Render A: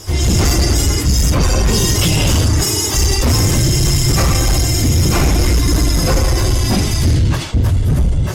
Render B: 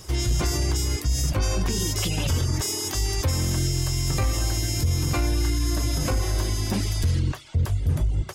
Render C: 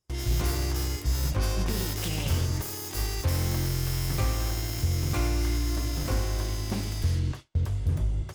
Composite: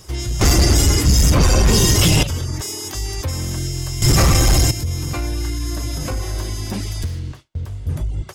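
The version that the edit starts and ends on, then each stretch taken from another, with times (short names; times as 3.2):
B
0.41–2.23 from A
4.02–4.71 from A
7.06–7.87 from C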